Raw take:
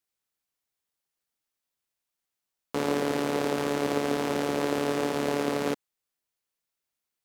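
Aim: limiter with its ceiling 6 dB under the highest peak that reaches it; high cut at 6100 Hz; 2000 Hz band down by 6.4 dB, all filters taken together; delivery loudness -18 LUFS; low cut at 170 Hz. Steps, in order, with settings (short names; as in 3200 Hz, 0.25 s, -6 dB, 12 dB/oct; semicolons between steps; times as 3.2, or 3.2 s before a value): HPF 170 Hz; LPF 6100 Hz; bell 2000 Hz -8.5 dB; gain +13.5 dB; limiter -7 dBFS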